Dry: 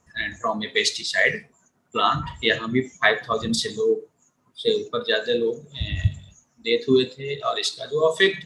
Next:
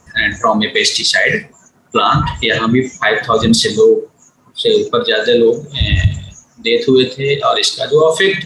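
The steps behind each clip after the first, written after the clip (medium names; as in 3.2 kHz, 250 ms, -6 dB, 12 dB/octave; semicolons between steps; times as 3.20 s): loudness maximiser +16 dB; trim -1 dB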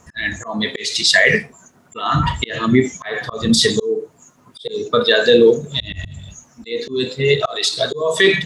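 slow attack 340 ms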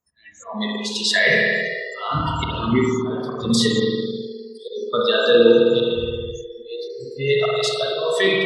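spectral replace 6.93–7.16 s, 230–7500 Hz before; spring tank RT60 2.6 s, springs 52 ms, chirp 30 ms, DRR -2.5 dB; spectral noise reduction 29 dB; trim -6.5 dB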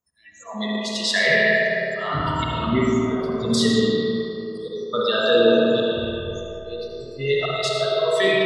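algorithmic reverb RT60 3.4 s, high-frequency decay 0.35×, pre-delay 40 ms, DRR 1 dB; trim -3 dB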